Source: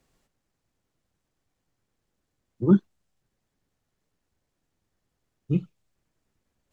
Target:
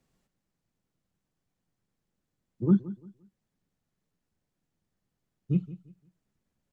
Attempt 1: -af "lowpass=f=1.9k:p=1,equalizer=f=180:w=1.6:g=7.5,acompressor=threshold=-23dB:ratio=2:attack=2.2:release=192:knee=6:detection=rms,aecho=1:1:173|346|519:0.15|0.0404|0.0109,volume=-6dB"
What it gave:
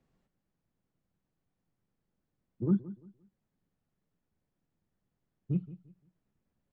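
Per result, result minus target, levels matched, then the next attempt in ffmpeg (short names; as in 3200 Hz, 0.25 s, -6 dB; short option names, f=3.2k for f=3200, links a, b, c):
compressor: peak gain reduction +5.5 dB; 2000 Hz band -2.5 dB
-af "lowpass=f=1.9k:p=1,equalizer=f=180:w=1.6:g=7.5,acompressor=threshold=-12dB:ratio=2:attack=2.2:release=192:knee=6:detection=rms,aecho=1:1:173|346|519:0.15|0.0404|0.0109,volume=-6dB"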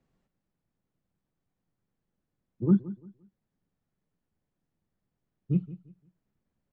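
2000 Hz band -2.5 dB
-af "equalizer=f=180:w=1.6:g=7.5,acompressor=threshold=-12dB:ratio=2:attack=2.2:release=192:knee=6:detection=rms,aecho=1:1:173|346|519:0.15|0.0404|0.0109,volume=-6dB"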